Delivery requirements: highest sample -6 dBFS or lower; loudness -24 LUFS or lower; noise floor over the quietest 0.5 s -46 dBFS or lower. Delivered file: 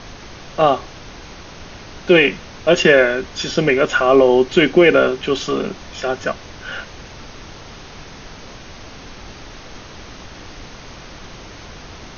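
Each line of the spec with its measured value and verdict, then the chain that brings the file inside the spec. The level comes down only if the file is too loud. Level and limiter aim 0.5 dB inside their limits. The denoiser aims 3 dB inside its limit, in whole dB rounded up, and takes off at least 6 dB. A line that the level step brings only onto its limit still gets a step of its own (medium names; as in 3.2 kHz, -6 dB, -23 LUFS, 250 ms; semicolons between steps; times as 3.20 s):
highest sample -1.5 dBFS: fail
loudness -15.5 LUFS: fail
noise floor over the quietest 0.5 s -37 dBFS: fail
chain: noise reduction 6 dB, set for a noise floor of -37 dBFS; trim -9 dB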